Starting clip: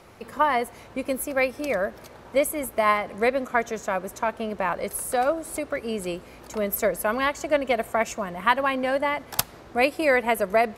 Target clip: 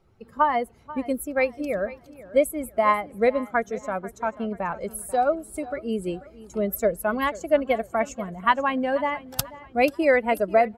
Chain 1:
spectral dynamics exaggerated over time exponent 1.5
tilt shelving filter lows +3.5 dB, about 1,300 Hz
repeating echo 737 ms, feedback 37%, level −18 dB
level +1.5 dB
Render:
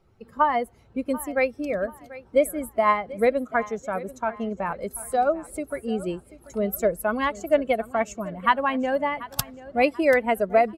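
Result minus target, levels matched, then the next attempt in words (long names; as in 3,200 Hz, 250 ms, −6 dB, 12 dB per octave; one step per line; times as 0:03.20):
echo 249 ms late
spectral dynamics exaggerated over time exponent 1.5
tilt shelving filter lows +3.5 dB, about 1,300 Hz
repeating echo 488 ms, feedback 37%, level −18 dB
level +1.5 dB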